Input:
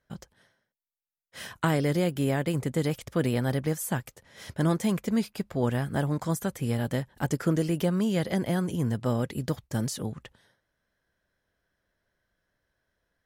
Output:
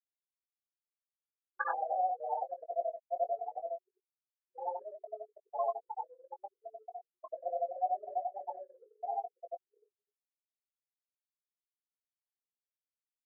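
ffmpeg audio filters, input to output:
-filter_complex "[0:a]afftfilt=real='re':imag='-im':win_size=8192:overlap=0.75,afftfilt=real='re*gte(hypot(re,im),0.112)':imag='im*gte(hypot(re,im),0.112)':win_size=1024:overlap=0.75,highpass=f=540:t=q:w=0.5412,highpass=f=540:t=q:w=1.307,lowpass=f=3100:t=q:w=0.5176,lowpass=f=3100:t=q:w=0.7071,lowpass=f=3100:t=q:w=1.932,afreqshift=200,anlmdn=0.000398,asplit=2[s0][s1];[s1]adelay=19,volume=0.376[s2];[s0][s2]amix=inputs=2:normalize=0,volume=2.51"

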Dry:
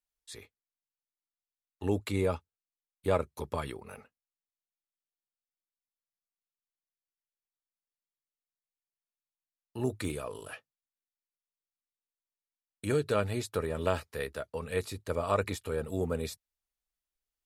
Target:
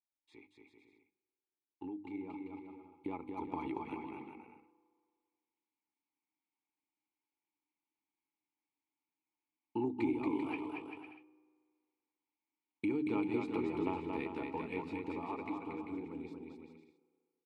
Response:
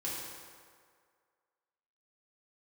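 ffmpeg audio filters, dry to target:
-filter_complex "[0:a]asplit=3[s0][s1][s2];[s0]bandpass=f=300:t=q:w=8,volume=1[s3];[s1]bandpass=f=870:t=q:w=8,volume=0.501[s4];[s2]bandpass=f=2240:t=q:w=8,volume=0.355[s5];[s3][s4][s5]amix=inputs=3:normalize=0,bandreject=f=50:t=h:w=6,bandreject=f=100:t=h:w=6,bandreject=f=150:t=h:w=6,bandreject=f=200:t=h:w=6,bandreject=f=250:t=h:w=6,bandreject=f=300:t=h:w=6,asplit=2[s6][s7];[1:a]atrim=start_sample=2205[s8];[s7][s8]afir=irnorm=-1:irlink=0,volume=0.0668[s9];[s6][s9]amix=inputs=2:normalize=0,acompressor=threshold=0.00251:ratio=5,highshelf=f=4500:g=-10,dynaudnorm=f=540:g=13:m=4.22,aecho=1:1:230|391|503.7|582.6|637.8:0.631|0.398|0.251|0.158|0.1,volume=2.11"

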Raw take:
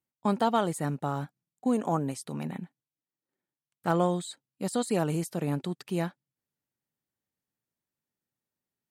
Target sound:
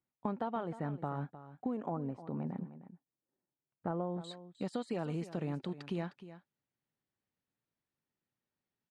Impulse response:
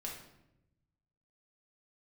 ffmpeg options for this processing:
-af "asetnsamples=n=441:p=0,asendcmd='1.9 lowpass f 1000;4.24 lowpass f 3700',lowpass=2000,acompressor=threshold=0.0178:ratio=4,aecho=1:1:308:0.2"

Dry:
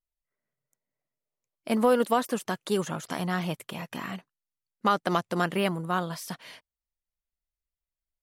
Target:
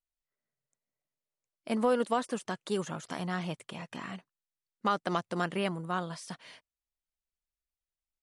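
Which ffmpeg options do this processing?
-af "aresample=22050,aresample=44100,volume=0.562"

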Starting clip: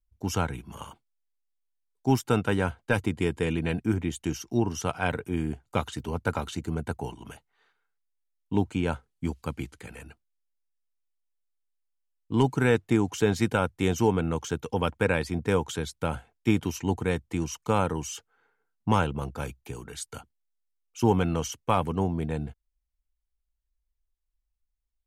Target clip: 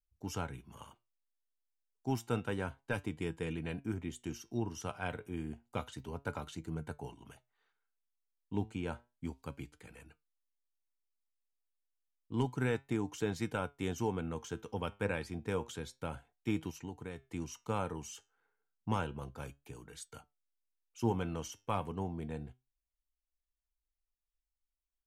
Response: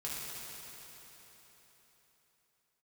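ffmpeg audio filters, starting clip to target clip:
-filter_complex "[0:a]flanger=delay=6.1:depth=3.9:regen=80:speed=0.3:shape=triangular,asplit=3[s0][s1][s2];[s0]afade=t=out:st=16.7:d=0.02[s3];[s1]acompressor=threshold=0.0224:ratio=6,afade=t=in:st=16.7:d=0.02,afade=t=out:st=17.22:d=0.02[s4];[s2]afade=t=in:st=17.22:d=0.02[s5];[s3][s4][s5]amix=inputs=3:normalize=0,volume=0.473"

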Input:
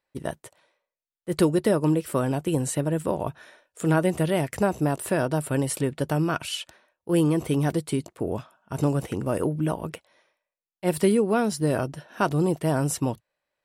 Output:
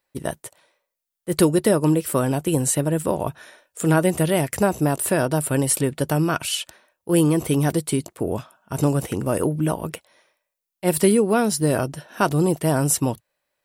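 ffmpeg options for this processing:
-af "highshelf=f=7200:g=10,volume=1.5"

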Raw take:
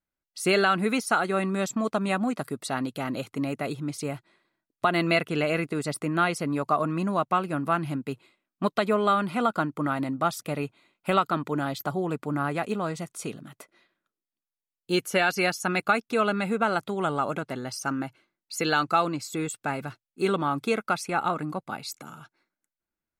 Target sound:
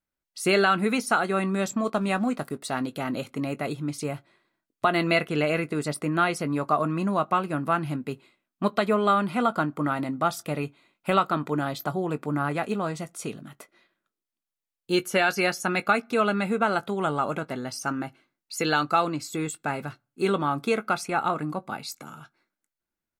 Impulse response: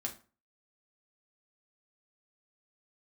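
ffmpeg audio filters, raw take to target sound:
-filter_complex "[0:a]asettb=1/sr,asplit=3[s0][s1][s2];[s0]atrim=end=1.844[s3];[s1]atrim=start=1.84:end=2.81,asetpts=PTS-STARTPTS,afade=t=in:d=0.004:c=qsin,afade=t=out:st=0.966:d=0.004:c=qsin,aeval=exprs='sgn(val(0))*max(abs(val(0))-0.00237,0)':c=same[s4];[s2]atrim=start=2.806[s5];[s3][s4]acrossfade=d=0.004:c1=hsin:c2=qsin[s6];[s6][s5]acrossfade=d=0.004:c1=qsin:c2=hsin,asplit=2[s7][s8];[s8]adelay=20,volume=0.2[s9];[s7][s9]amix=inputs=2:normalize=0,asplit=2[s10][s11];[1:a]atrim=start_sample=2205,lowpass=4200[s12];[s11][s12]afir=irnorm=-1:irlink=0,volume=0.112[s13];[s10][s13]amix=inputs=2:normalize=0"

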